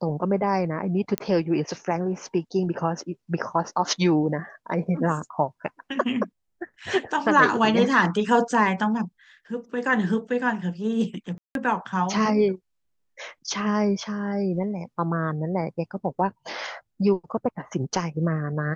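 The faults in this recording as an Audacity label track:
1.180000	1.180000	pop -10 dBFS
11.380000	11.550000	gap 0.172 s

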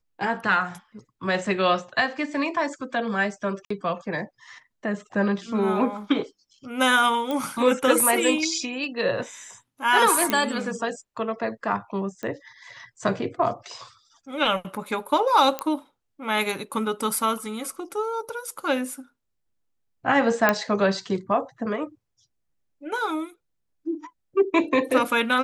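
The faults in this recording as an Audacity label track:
3.650000	3.700000	gap 54 ms
7.310000	7.310000	pop -16 dBFS
10.300000	10.300000	pop -7 dBFS
12.230000	12.230000	pop -19 dBFS
15.590000	15.590000	pop -11 dBFS
20.490000	20.490000	pop -5 dBFS

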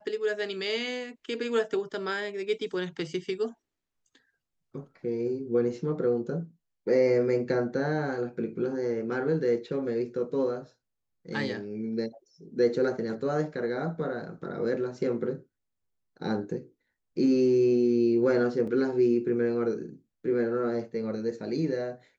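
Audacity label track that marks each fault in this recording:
18.670000	18.670000	gap 4.5 ms

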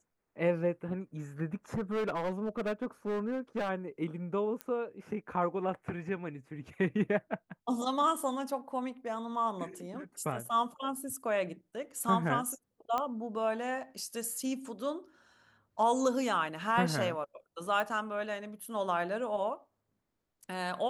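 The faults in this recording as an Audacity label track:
1.740000	3.700000	clipped -29 dBFS
4.610000	4.610000	pop -22 dBFS
12.980000	12.980000	pop -19 dBFS
17.800000	17.800000	pop

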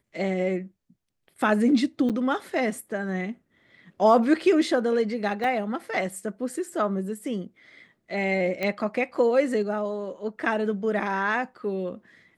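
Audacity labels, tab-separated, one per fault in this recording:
2.090000	2.100000	gap 7.8 ms
5.440000	5.440000	gap 2.4 ms
8.630000	8.630000	pop -15 dBFS

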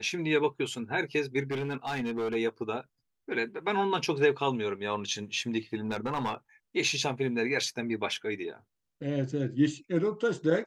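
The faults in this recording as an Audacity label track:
1.510000	2.360000	clipped -28 dBFS
5.860000	6.350000	clipped -26 dBFS

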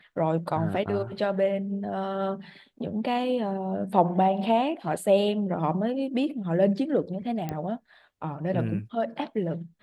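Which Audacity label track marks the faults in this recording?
7.490000	7.490000	pop -18 dBFS

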